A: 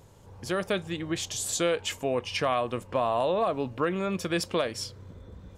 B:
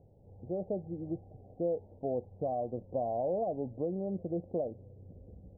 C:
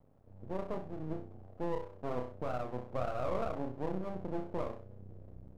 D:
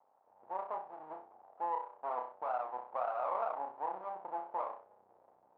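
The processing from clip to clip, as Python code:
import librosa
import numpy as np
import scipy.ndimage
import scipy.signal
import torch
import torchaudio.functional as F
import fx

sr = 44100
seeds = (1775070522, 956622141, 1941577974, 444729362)

y1 = scipy.signal.sosfilt(scipy.signal.cheby1(6, 1.0, 780.0, 'lowpass', fs=sr, output='sos'), x)
y1 = F.gain(torch.from_numpy(y1), -5.0).numpy()
y2 = fx.room_flutter(y1, sr, wall_m=5.5, rt60_s=0.45)
y2 = np.maximum(y2, 0.0)
y2 = F.gain(torch.from_numpy(y2), -1.0).numpy()
y3 = fx.ladder_bandpass(y2, sr, hz=960.0, resonance_pct=65)
y3 = F.gain(torch.from_numpy(y3), 12.0).numpy()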